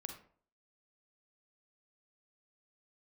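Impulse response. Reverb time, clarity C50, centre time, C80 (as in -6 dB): 0.50 s, 6.5 dB, 20 ms, 11.0 dB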